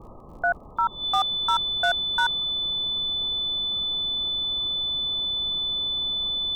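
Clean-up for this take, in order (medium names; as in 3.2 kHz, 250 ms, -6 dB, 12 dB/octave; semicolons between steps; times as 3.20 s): clip repair -15 dBFS; de-click; band-stop 3.5 kHz, Q 30; noise print and reduce 30 dB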